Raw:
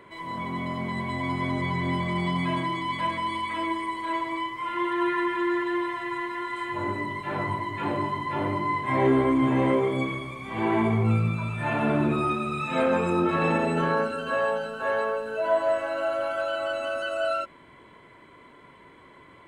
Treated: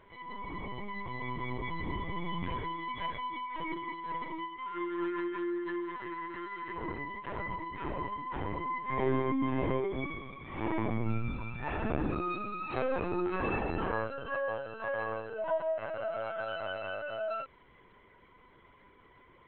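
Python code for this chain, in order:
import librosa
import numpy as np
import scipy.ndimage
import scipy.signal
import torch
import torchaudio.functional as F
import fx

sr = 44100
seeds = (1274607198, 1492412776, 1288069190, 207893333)

y = fx.lpc_vocoder(x, sr, seeds[0], excitation='pitch_kept', order=16)
y = y * librosa.db_to_amplitude(-8.5)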